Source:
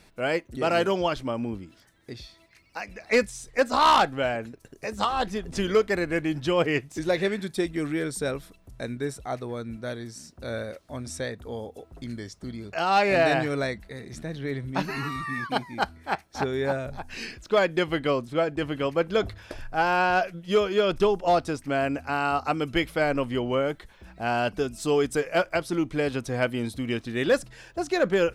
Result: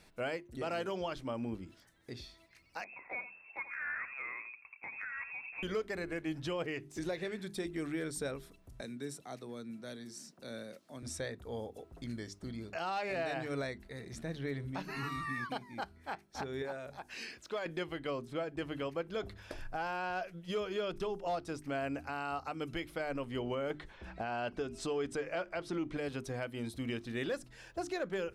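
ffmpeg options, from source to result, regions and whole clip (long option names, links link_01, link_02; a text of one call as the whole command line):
ffmpeg -i in.wav -filter_complex "[0:a]asettb=1/sr,asplit=3[link_01][link_02][link_03];[link_01]atrim=end=2.844[link_04];[link_02]atrim=start=2.84:end=5.63,asetpts=PTS-STARTPTS,afade=type=in:duration=0.004:curve=qsin,afade=type=out:start_time=2.786:duration=0.004:curve=qsin,lowpass=frequency=2300:width_type=q:width=0.5098,lowpass=frequency=2300:width_type=q:width=0.6013,lowpass=frequency=2300:width_type=q:width=0.9,lowpass=frequency=2300:width_type=q:width=2.563,afreqshift=-2700,acompressor=threshold=-39dB:ratio=2.5:attack=3.2:release=140:knee=1:detection=peak,aecho=1:1:86:0.266,atrim=end_sample=123039[link_05];[link_03]atrim=start=5.626[link_06];[link_04][link_05]acrossfade=duration=0.004:curve1=hsin:curve2=qsin[link_07];[link_07][link_06]acrossfade=duration=0.004:curve1=qsin:curve2=hsin,asettb=1/sr,asplit=3[link_08][link_09][link_10];[link_08]atrim=end=8.814[link_11];[link_09]atrim=start=8.81:end=11.03,asetpts=PTS-STARTPTS,afade=type=in:duration=0.004:curve=qsin,afade=type=out:start_time=2.216:duration=0.004:curve=qsin,acrossover=split=270|3000[link_12][link_13][link_14];[link_13]acompressor=threshold=-55dB:ratio=1.5:attack=3.2:release=140:knee=2.83:detection=peak[link_15];[link_12][link_15][link_14]amix=inputs=3:normalize=0,highpass=frequency=160:width=0.5412,highpass=frequency=160:width=1.3066[link_16];[link_10]atrim=start=11.026[link_17];[link_11][link_16]acrossfade=duration=0.004:curve1=hsin:curve2=qsin[link_18];[link_18][link_17]acrossfade=duration=0.004:curve1=qsin:curve2=hsin,asettb=1/sr,asplit=3[link_19][link_20][link_21];[link_19]atrim=end=16.624[link_22];[link_20]atrim=start=16.62:end=17.66,asetpts=PTS-STARTPTS,afade=type=in:duration=0.004:curve=qsin,afade=type=out:start_time=1.036:duration=0.004:curve=qsin,highpass=frequency=350:poles=1,acompressor=threshold=-38dB:ratio=1.5:attack=3.2:release=140:knee=1:detection=peak[link_23];[link_21]atrim=start=17.656[link_24];[link_22][link_23]acrossfade=duration=0.004:curve1=hsin:curve2=qsin[link_25];[link_25][link_24]acrossfade=duration=0.004:curve1=qsin:curve2=hsin,asettb=1/sr,asplit=3[link_26][link_27][link_28];[link_26]atrim=end=23.704[link_29];[link_27]atrim=start=23.7:end=25.97,asetpts=PTS-STARTPTS,afade=type=in:duration=0.004:curve=qsin,afade=type=out:start_time=2.266:duration=0.004:curve=qsin,lowpass=8100,bass=frequency=250:gain=-3,treble=frequency=4000:gain=-6,acontrast=86[link_30];[link_28]atrim=start=25.966[link_31];[link_29][link_30]acrossfade=duration=0.004:curve1=hsin:curve2=qsin[link_32];[link_32][link_31]acrossfade=duration=0.004:curve1=qsin:curve2=hsin,bandreject=frequency=50:width_type=h:width=6,bandreject=frequency=100:width_type=h:width=6,bandreject=frequency=150:width_type=h:width=6,bandreject=frequency=200:width_type=h:width=6,bandreject=frequency=250:width_type=h:width=6,bandreject=frequency=300:width_type=h:width=6,bandreject=frequency=350:width_type=h:width=6,bandreject=frequency=400:width_type=h:width=6,alimiter=limit=-22.5dB:level=0:latency=1:release=326,volume=-5.5dB" out.wav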